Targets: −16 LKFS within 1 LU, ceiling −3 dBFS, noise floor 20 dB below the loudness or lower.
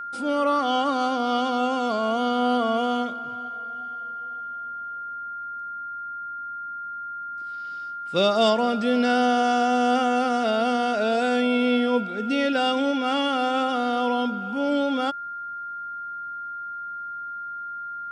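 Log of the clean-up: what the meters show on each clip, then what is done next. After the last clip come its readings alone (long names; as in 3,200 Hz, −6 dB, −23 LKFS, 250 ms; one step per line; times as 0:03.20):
interfering tone 1,400 Hz; level of the tone −31 dBFS; integrated loudness −25.0 LKFS; sample peak −8.5 dBFS; target loudness −16.0 LKFS
→ notch filter 1,400 Hz, Q 30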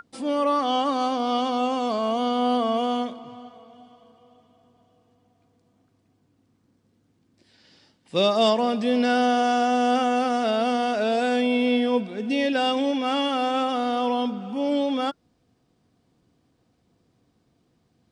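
interfering tone none found; integrated loudness −23.5 LKFS; sample peak −9.0 dBFS; target loudness −16.0 LKFS
→ level +7.5 dB
brickwall limiter −3 dBFS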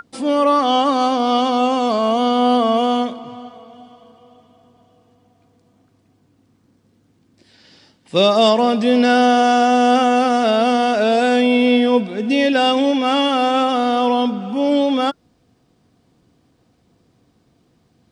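integrated loudness −16.0 LKFS; sample peak −3.0 dBFS; background noise floor −60 dBFS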